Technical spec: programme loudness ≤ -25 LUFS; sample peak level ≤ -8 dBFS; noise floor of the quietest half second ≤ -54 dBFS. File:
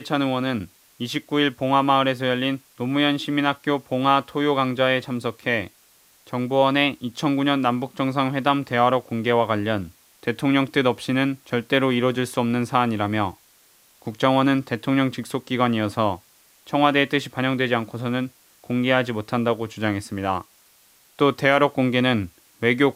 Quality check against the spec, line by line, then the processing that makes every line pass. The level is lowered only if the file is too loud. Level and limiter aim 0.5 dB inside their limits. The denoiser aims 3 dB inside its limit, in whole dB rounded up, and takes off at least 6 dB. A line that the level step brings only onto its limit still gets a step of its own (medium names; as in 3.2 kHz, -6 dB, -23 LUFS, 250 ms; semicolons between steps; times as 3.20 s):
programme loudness -22.0 LUFS: fail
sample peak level -3.5 dBFS: fail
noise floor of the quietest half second -56 dBFS: pass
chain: trim -3.5 dB; peak limiter -8.5 dBFS